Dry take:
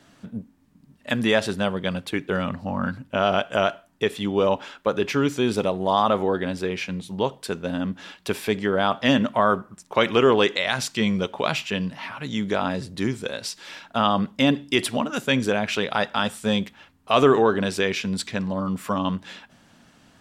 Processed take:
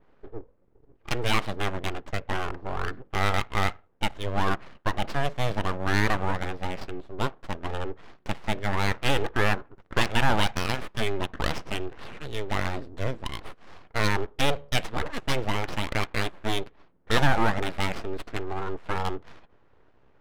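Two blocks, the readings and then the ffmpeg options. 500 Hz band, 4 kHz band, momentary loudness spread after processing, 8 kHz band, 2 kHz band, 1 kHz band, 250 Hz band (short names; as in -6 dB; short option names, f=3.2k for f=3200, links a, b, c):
-9.5 dB, -4.5 dB, 12 LU, -4.5 dB, -2.0 dB, -4.0 dB, -9.5 dB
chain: -af "aeval=exprs='abs(val(0))':c=same,adynamicequalizer=threshold=0.00501:dfrequency=6300:dqfactor=1.3:tfrequency=6300:tqfactor=1.3:attack=5:release=100:ratio=0.375:range=3:mode=cutabove:tftype=bell,adynamicsmooth=sensitivity=6.5:basefreq=1.4k,volume=-1.5dB"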